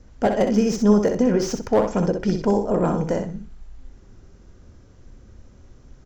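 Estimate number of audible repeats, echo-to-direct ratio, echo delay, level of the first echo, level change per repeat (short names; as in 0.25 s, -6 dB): 2, -6.5 dB, 63 ms, -6.5 dB, -14.5 dB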